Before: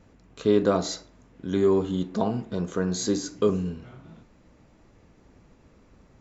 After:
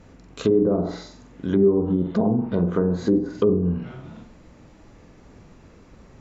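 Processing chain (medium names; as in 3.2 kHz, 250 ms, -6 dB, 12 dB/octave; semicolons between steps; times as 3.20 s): peak limiter -15.5 dBFS, peak gain reduction 6.5 dB; flutter echo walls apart 7.8 m, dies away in 0.42 s; low-pass that closes with the level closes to 480 Hz, closed at -21.5 dBFS; trim +6.5 dB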